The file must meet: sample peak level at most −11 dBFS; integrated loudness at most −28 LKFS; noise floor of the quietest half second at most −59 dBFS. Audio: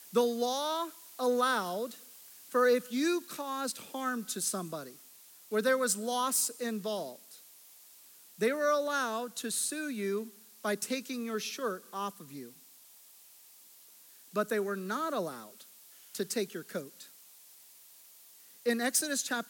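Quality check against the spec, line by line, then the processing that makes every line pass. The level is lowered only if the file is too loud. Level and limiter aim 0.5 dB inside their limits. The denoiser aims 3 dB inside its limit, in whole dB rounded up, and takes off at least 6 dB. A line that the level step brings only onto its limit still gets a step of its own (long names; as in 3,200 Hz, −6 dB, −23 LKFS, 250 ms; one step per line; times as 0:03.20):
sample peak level −15.0 dBFS: in spec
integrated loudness −32.5 LKFS: in spec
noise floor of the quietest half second −57 dBFS: out of spec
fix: broadband denoise 6 dB, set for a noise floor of −57 dBFS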